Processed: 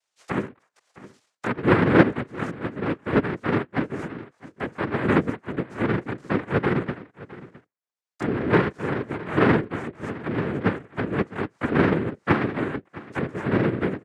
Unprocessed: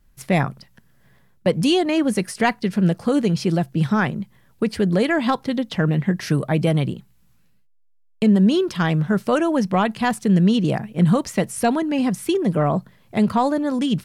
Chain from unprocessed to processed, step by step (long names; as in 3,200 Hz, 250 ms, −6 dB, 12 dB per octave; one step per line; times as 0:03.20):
envelope filter 320–2,200 Hz, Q 8.4, down, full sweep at −19 dBFS
pitch-shifted copies added +4 semitones −11 dB, +5 semitones −4 dB
cochlear-implant simulation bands 3
on a send: single-tap delay 662 ms −18.5 dB
on the sum: level +4 dB